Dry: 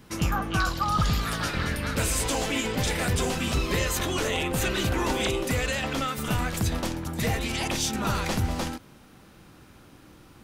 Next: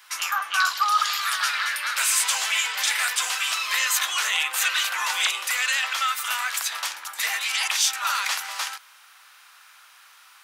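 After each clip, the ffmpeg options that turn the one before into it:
ffmpeg -i in.wav -af "highpass=frequency=1100:width=0.5412,highpass=frequency=1100:width=1.3066,volume=7.5dB" out.wav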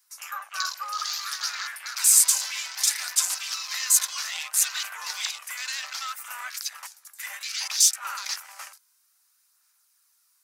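ffmpeg -i in.wav -af "afwtdn=0.0316,aexciter=amount=7.6:drive=3.2:freq=4500,aphaser=in_gain=1:out_gain=1:delay=2:decay=0.26:speed=0.62:type=sinusoidal,volume=-10.5dB" out.wav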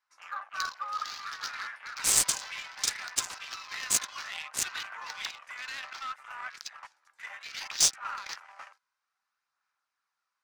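ffmpeg -i in.wav -af "adynamicsmooth=sensitivity=1.5:basefreq=1900,volume=-1dB" out.wav

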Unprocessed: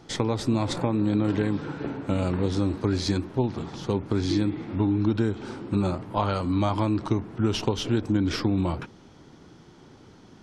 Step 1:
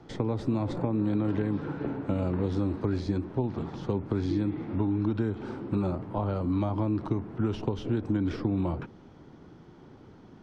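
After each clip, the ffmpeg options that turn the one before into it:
ffmpeg -i in.wav -filter_complex "[0:a]acrossover=split=250|670[link_01][link_02][link_03];[link_01]acompressor=threshold=-28dB:ratio=4[link_04];[link_02]acompressor=threshold=-30dB:ratio=4[link_05];[link_03]acompressor=threshold=-38dB:ratio=4[link_06];[link_04][link_05][link_06]amix=inputs=3:normalize=0,lowpass=frequency=1400:poles=1" out.wav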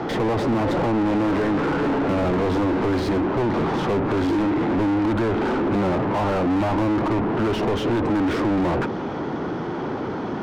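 ffmpeg -i in.wav -filter_complex "[0:a]asplit=2[link_01][link_02];[link_02]highpass=frequency=720:poles=1,volume=41dB,asoftclip=type=tanh:threshold=-13.5dB[link_03];[link_01][link_03]amix=inputs=2:normalize=0,lowpass=frequency=1000:poles=1,volume=-6dB" out.wav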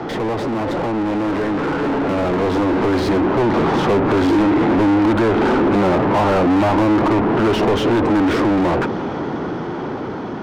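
ffmpeg -i in.wav -filter_complex "[0:a]acrossover=split=240[link_01][link_02];[link_01]alimiter=level_in=1.5dB:limit=-24dB:level=0:latency=1,volume=-1.5dB[link_03];[link_03][link_02]amix=inputs=2:normalize=0,dynaudnorm=framelen=730:gausssize=7:maxgain=6dB,volume=1dB" out.wav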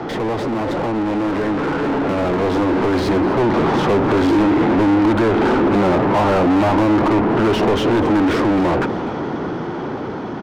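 ffmpeg -i in.wav -af "aecho=1:1:251:0.158" out.wav

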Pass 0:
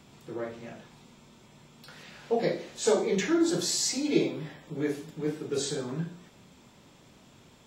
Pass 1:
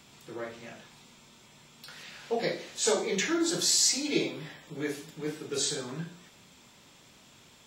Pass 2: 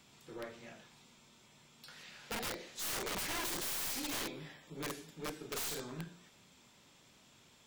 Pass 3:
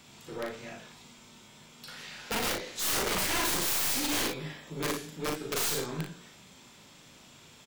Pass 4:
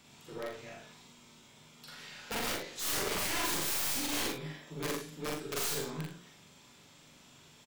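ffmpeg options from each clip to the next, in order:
ffmpeg -i in.wav -af "tiltshelf=frequency=1100:gain=-5" out.wav
ffmpeg -i in.wav -af "aeval=exprs='(mod(21.1*val(0)+1,2)-1)/21.1':channel_layout=same,aeval=exprs='0.0501*(cos(1*acos(clip(val(0)/0.0501,-1,1)))-cos(1*PI/2))+0.00708*(cos(2*acos(clip(val(0)/0.0501,-1,1)))-cos(2*PI/2))':channel_layout=same,volume=-7dB" out.wav
ffmpeg -i in.wav -af "aecho=1:1:38|58:0.562|0.398,volume=7.5dB" out.wav
ffmpeg -i in.wav -filter_complex "[0:a]asplit=2[link_01][link_02];[link_02]adelay=45,volume=-4dB[link_03];[link_01][link_03]amix=inputs=2:normalize=0,volume=-5.5dB" out.wav

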